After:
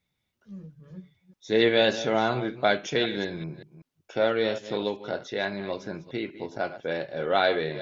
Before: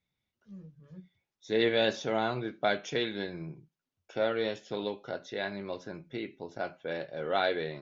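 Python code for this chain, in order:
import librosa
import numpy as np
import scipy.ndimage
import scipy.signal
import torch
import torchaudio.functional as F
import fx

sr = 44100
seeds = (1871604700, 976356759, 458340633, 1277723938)

y = fx.reverse_delay(x, sr, ms=191, wet_db=-13.5)
y = y * 10.0 ** (5.5 / 20.0)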